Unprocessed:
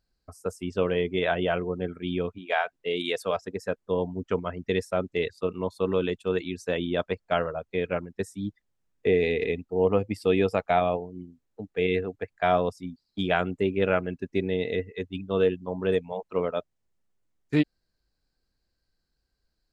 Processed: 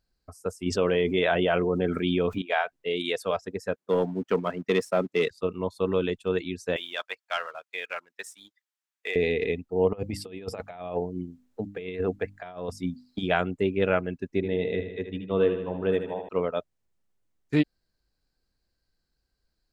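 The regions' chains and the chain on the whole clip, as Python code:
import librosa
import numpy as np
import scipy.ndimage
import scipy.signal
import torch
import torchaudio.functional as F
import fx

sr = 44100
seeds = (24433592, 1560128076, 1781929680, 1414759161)

y = fx.chain(x, sr, fx.low_shelf(hz=110.0, db=-8.0),
    fx.env_flatten(amount_pct=70), at=(0.66, 2.42))
y = fx.chain(y, sr, fx.highpass(hz=150.0, slope=24),
    fx.leveller(passes=1), at=(3.76, 5.31))
y = fx.chain(y, sr, fx.highpass(hz=1300.0, slope=12),
    fx.leveller(passes=1), at=(6.76, 9.16))
y = fx.chain(y, sr, fx.over_compress(threshold_db=-30.0, ratio=-0.5),
    fx.hum_notches(base_hz=50, count=6), at=(9.93, 13.23))
y = fx.chain(y, sr, fx.high_shelf(hz=4400.0, db=-11.5),
    fx.echo_feedback(ms=78, feedback_pct=60, wet_db=-9), at=(14.35, 16.29))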